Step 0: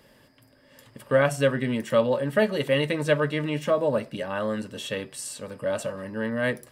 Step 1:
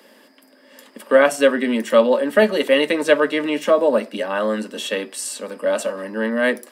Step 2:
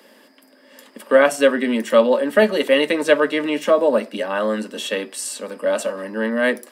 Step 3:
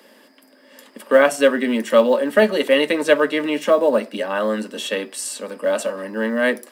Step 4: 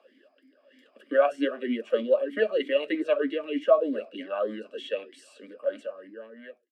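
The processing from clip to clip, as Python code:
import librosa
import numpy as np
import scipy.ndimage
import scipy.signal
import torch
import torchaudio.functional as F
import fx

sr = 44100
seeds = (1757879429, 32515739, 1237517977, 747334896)

y1 = scipy.signal.sosfilt(scipy.signal.butter(8, 210.0, 'highpass', fs=sr, output='sos'), x)
y1 = y1 * librosa.db_to_amplitude(7.5)
y2 = y1
y3 = fx.quant_companded(y2, sr, bits=8)
y4 = fx.fade_out_tail(y3, sr, length_s=1.49)
y4 = fx.vowel_sweep(y4, sr, vowels='a-i', hz=3.2)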